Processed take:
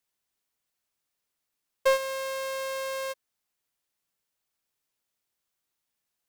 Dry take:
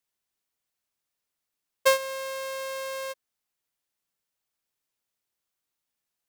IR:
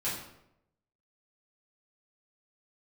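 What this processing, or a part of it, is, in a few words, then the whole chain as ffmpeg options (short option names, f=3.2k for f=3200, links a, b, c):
saturation between pre-emphasis and de-emphasis: -af "highshelf=f=3.4k:g=9,asoftclip=type=tanh:threshold=-16dB,highshelf=f=3.4k:g=-9,volume=1.5dB"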